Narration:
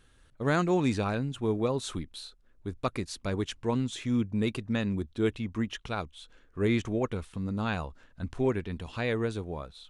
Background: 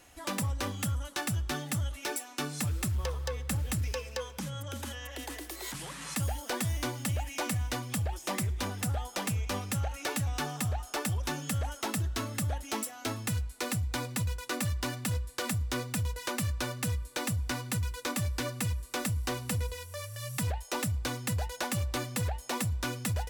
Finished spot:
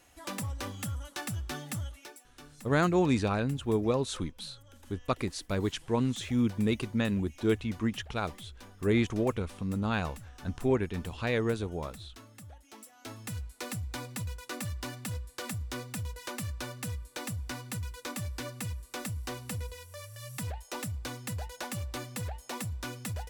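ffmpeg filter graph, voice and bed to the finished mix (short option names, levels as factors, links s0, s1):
-filter_complex "[0:a]adelay=2250,volume=1.06[s0];[1:a]volume=2.66,afade=t=out:st=1.8:d=0.33:silence=0.211349,afade=t=in:st=12.77:d=0.7:silence=0.237137[s1];[s0][s1]amix=inputs=2:normalize=0"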